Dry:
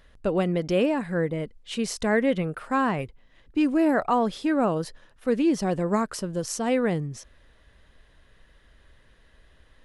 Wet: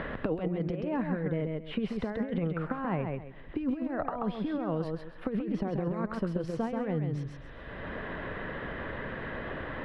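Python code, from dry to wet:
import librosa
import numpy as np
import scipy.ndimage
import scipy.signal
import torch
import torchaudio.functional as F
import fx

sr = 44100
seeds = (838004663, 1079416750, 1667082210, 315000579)

y = fx.high_shelf(x, sr, hz=5000.0, db=-11.5, at=(5.29, 5.8))
y = fx.over_compress(y, sr, threshold_db=-27.0, ratio=-0.5)
y = fx.air_absorb(y, sr, metres=450.0)
y = fx.echo_feedback(y, sr, ms=133, feedback_pct=17, wet_db=-5.0)
y = fx.band_squash(y, sr, depth_pct=100)
y = y * librosa.db_to_amplitude(-3.5)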